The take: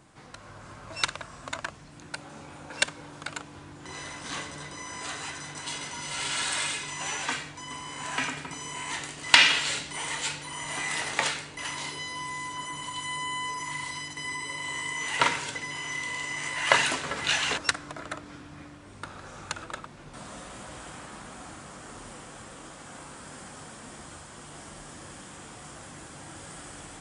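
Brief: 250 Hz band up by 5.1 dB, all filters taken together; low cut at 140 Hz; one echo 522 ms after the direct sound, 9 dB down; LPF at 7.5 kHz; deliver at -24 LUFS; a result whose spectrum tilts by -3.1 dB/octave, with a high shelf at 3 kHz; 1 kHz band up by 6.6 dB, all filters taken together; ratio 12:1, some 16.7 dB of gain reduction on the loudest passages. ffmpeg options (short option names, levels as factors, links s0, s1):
-af "highpass=140,lowpass=7500,equalizer=f=250:t=o:g=6.5,equalizer=f=1000:t=o:g=8,highshelf=f=3000:g=-7.5,acompressor=threshold=0.0251:ratio=12,aecho=1:1:522:0.355,volume=4.47"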